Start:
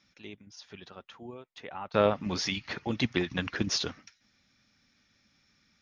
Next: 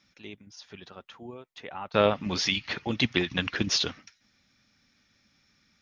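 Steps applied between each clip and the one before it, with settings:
dynamic equaliser 3,100 Hz, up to +6 dB, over −48 dBFS, Q 1.2
level +1.5 dB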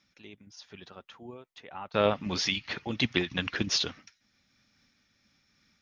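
amplitude modulation by smooth noise, depth 60%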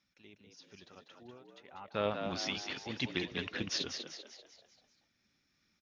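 echo with shifted repeats 195 ms, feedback 48%, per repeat +68 Hz, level −6.5 dB
level −8.5 dB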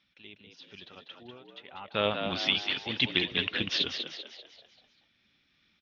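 low-pass with resonance 3,300 Hz, resonance Q 3.2
level +4 dB

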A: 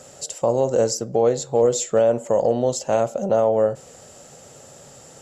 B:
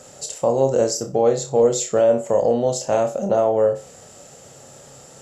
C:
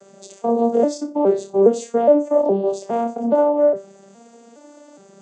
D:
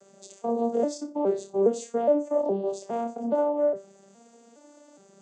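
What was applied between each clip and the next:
flutter between parallel walls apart 5.1 metres, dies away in 0.26 s
vocoder with an arpeggio as carrier minor triad, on G3, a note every 414 ms; level +2 dB
high-shelf EQ 5,000 Hz +5 dB; level −8.5 dB

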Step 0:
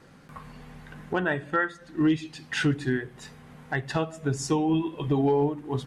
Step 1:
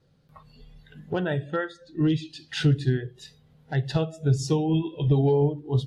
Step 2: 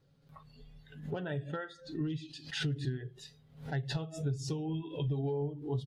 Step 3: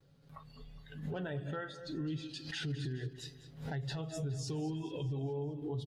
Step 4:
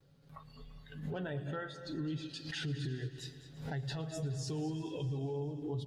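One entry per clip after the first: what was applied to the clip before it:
low shelf with overshoot 180 Hz +8 dB, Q 1.5; noise reduction from a noise print of the clip's start 14 dB; octave-band graphic EQ 500/1,000/2,000/4,000/8,000 Hz +6/−5/−6/+8/−4 dB; level −1.5 dB
downward compressor 6 to 1, threshold −28 dBFS, peak gain reduction 11.5 dB; comb filter 7.2 ms, depth 40%; background raised ahead of every attack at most 120 dB per second; level −6 dB
brickwall limiter −34 dBFS, peak gain reduction 9.5 dB; repeating echo 208 ms, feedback 54%, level −14.5 dB; pitch vibrato 0.37 Hz 18 cents; level +2.5 dB
echo machine with several playback heads 114 ms, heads all three, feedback 59%, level −22.5 dB

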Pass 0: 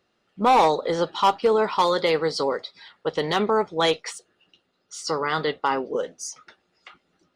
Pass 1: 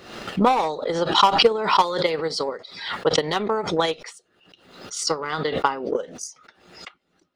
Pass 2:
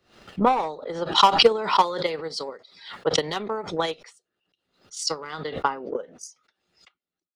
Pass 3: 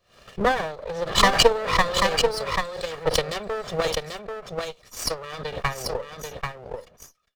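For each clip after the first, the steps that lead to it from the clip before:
transient designer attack +12 dB, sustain −2 dB; background raised ahead of every attack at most 73 dB per second; level −6 dB
multiband upward and downward expander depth 70%; level −4.5 dB
lower of the sound and its delayed copy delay 1.7 ms; single-tap delay 788 ms −5 dB; level +1 dB

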